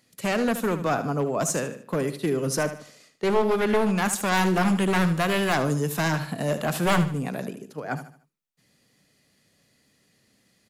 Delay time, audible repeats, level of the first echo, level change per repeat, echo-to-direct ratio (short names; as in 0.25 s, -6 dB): 75 ms, 3, -11.5 dB, -9.0 dB, -11.0 dB